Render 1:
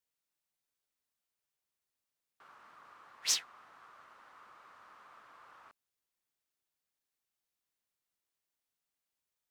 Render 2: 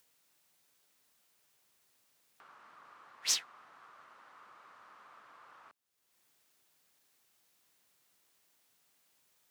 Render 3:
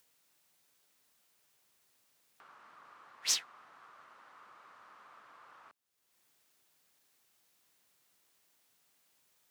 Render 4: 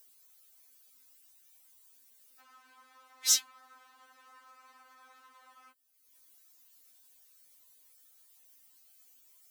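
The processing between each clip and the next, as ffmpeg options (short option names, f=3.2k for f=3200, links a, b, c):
-af "highpass=100,acompressor=mode=upward:threshold=-57dB:ratio=2.5"
-af anull
-af "crystalizer=i=2.5:c=0,afftfilt=real='re*3.46*eq(mod(b,12),0)':imag='im*3.46*eq(mod(b,12),0)':win_size=2048:overlap=0.75"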